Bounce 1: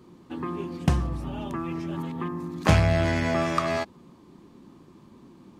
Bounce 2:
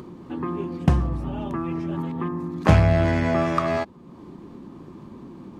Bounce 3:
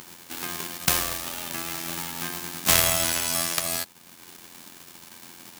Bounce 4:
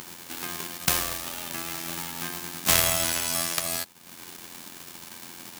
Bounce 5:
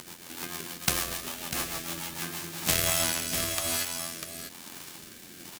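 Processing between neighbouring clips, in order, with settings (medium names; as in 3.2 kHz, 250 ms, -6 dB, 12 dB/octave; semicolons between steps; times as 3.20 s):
treble shelf 2.5 kHz -10.5 dB; upward compressor, threshold -37 dBFS; trim +4 dB
formants flattened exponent 0.1; AM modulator 86 Hz, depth 60%; trim -1.5 dB
upward compressor, threshold -33 dBFS; trim -1.5 dB
on a send: delay 646 ms -5.5 dB; on the sum: rotary cabinet horn 6.7 Hz, later 1.1 Hz, at 2.09 s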